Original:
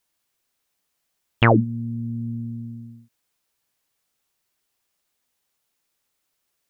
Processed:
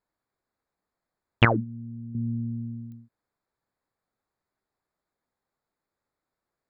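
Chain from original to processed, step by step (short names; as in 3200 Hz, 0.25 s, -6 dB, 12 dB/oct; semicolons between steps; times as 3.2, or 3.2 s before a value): Wiener smoothing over 15 samples; 1.45–2.15 ladder low-pass 1800 Hz, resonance 50%; pops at 2.92, -39 dBFS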